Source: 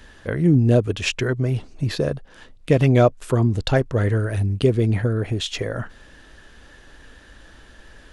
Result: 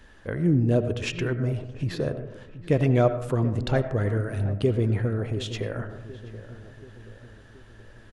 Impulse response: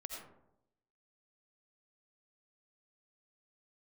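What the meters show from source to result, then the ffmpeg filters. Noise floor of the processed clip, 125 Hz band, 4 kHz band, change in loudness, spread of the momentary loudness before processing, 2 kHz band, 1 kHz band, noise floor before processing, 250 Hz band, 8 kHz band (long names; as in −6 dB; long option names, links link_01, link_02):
−50 dBFS, −5.0 dB, −8.5 dB, −5.0 dB, 11 LU, −6.5 dB, −5.0 dB, −49 dBFS, −5.0 dB, can't be measured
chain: -filter_complex "[0:a]asplit=2[link_01][link_02];[link_02]adelay=728,lowpass=frequency=1400:poles=1,volume=-14.5dB,asplit=2[link_03][link_04];[link_04]adelay=728,lowpass=frequency=1400:poles=1,volume=0.54,asplit=2[link_05][link_06];[link_06]adelay=728,lowpass=frequency=1400:poles=1,volume=0.54,asplit=2[link_07][link_08];[link_08]adelay=728,lowpass=frequency=1400:poles=1,volume=0.54,asplit=2[link_09][link_10];[link_10]adelay=728,lowpass=frequency=1400:poles=1,volume=0.54[link_11];[link_01][link_03][link_05][link_07][link_09][link_11]amix=inputs=6:normalize=0,asplit=2[link_12][link_13];[1:a]atrim=start_sample=2205,lowpass=2900[link_14];[link_13][link_14]afir=irnorm=-1:irlink=0,volume=-2dB[link_15];[link_12][link_15]amix=inputs=2:normalize=0,volume=-8.5dB"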